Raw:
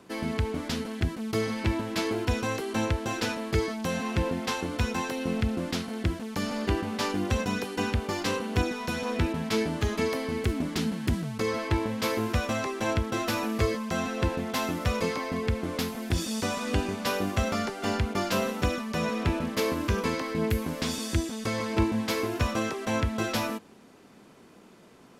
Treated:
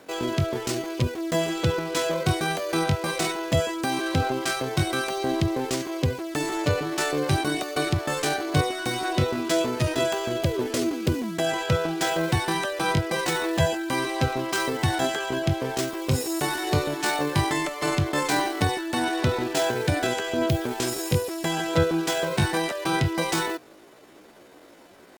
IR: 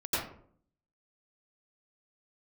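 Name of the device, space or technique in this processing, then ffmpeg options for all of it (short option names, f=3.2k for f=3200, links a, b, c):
chipmunk voice: -af "asetrate=66075,aresample=44100,atempo=0.66742,volume=3.5dB"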